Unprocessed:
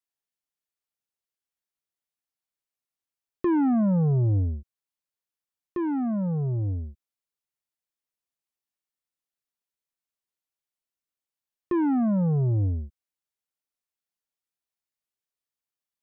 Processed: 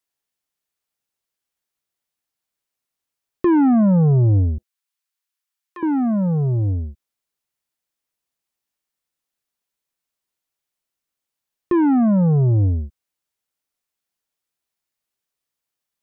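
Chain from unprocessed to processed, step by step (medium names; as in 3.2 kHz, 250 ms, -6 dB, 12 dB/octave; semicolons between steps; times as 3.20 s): 4.58–5.83 s: high-pass 1.1 kHz 12 dB/octave; trim +7.5 dB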